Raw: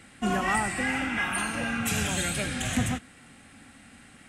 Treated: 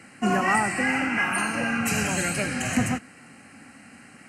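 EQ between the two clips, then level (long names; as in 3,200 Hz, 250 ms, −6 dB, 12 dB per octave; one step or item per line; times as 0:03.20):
high-pass filter 130 Hz 12 dB per octave
Butterworth band-reject 3,500 Hz, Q 3.1
high-shelf EQ 7,700 Hz −5.5 dB
+4.5 dB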